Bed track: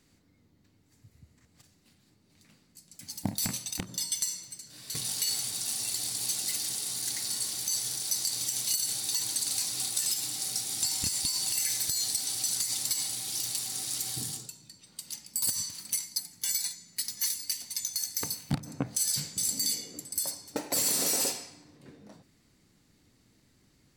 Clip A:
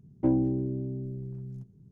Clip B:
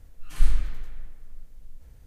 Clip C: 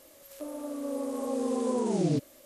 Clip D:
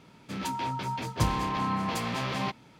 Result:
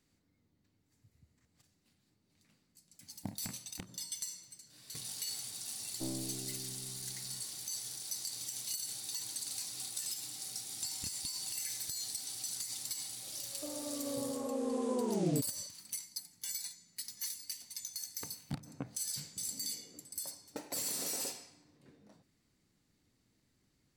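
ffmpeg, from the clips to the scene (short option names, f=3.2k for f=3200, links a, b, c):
-filter_complex "[0:a]volume=-10dB[a];[1:a]aeval=exprs='(tanh(10*val(0)+0.7)-tanh(0.7))/10':c=same,atrim=end=1.91,asetpts=PTS-STARTPTS,volume=-12.5dB,afade=t=in:d=0.004:c=hsin,afade=t=out:st=1.906:d=0.004:c=hsin,adelay=254457S[b];[3:a]atrim=end=2.45,asetpts=PTS-STARTPTS,volume=-5.5dB,afade=t=in:d=0.004:c=hsin,afade=t=out:st=2.446:d=0.004:c=hsin,adelay=13220[c];[a][b][c]amix=inputs=3:normalize=0"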